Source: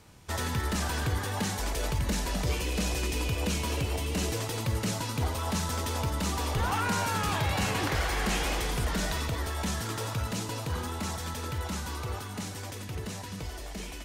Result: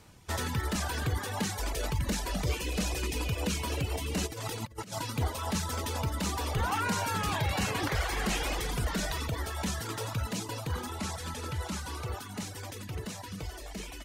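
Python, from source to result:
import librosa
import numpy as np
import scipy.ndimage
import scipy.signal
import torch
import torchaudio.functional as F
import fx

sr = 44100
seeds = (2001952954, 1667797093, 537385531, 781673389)

y = fx.delta_mod(x, sr, bps=64000, step_db=-40.0, at=(10.99, 12.07))
y = fx.dereverb_blind(y, sr, rt60_s=0.75)
y = fx.over_compress(y, sr, threshold_db=-38.0, ratio=-0.5, at=(4.26, 4.98), fade=0.02)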